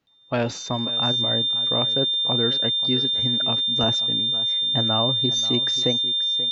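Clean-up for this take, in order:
notch filter 3,600 Hz, Q 30
echo removal 534 ms −15.5 dB

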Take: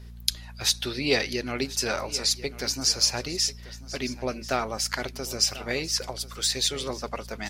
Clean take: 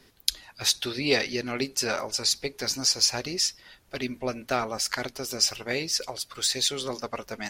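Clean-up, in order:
click removal
hum removal 58.3 Hz, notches 4
echo removal 1,040 ms −17 dB

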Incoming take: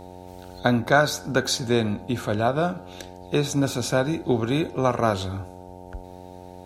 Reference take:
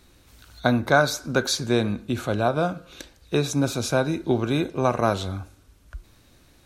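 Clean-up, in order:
hum removal 90.8 Hz, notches 10

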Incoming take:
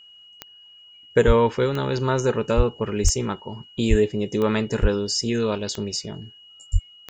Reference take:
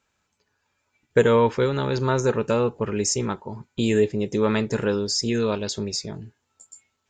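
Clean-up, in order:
click removal
notch filter 2,900 Hz, Q 30
high-pass at the plosives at 0:01.26/0:02.56/0:03.03/0:03.89/0:04.81/0:06.72

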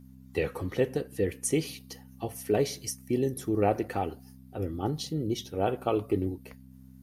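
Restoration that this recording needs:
hum removal 64.9 Hz, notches 4

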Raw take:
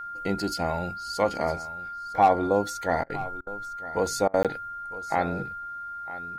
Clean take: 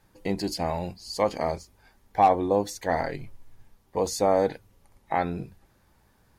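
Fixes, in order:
notch filter 1,400 Hz, Q 30
repair the gap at 0:04.43, 17 ms
repair the gap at 0:03.04/0:03.41/0:04.28, 57 ms
echo removal 956 ms −16.5 dB

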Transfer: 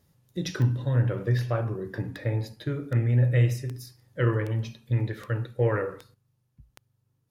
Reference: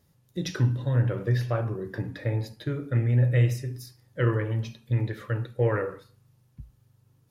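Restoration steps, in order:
click removal
level correction +10 dB, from 0:06.14

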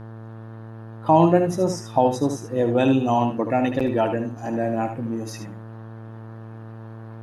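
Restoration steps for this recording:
hum removal 111.9 Hz, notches 16
echo removal 75 ms −8 dB

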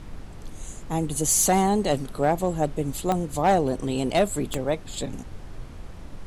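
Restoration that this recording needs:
clipped peaks rebuilt −13 dBFS
click removal
noise reduction from a noise print 30 dB

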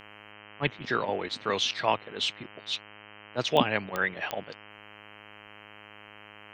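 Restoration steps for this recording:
click removal
hum removal 104.6 Hz, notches 30

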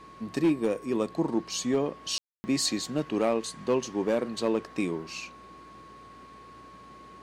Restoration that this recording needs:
clipped peaks rebuilt −18 dBFS
hum removal 59.6 Hz, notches 3
notch filter 1,100 Hz, Q 30
ambience match 0:02.18–0:02.44

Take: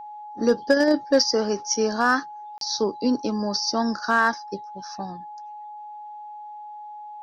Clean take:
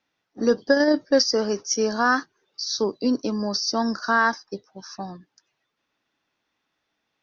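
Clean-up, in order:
clipped peaks rebuilt −9.5 dBFS
notch filter 840 Hz, Q 30
repair the gap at 0:02.58, 32 ms

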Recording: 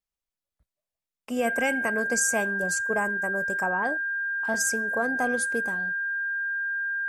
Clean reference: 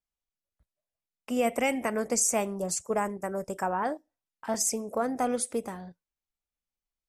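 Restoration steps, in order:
notch filter 1,600 Hz, Q 30

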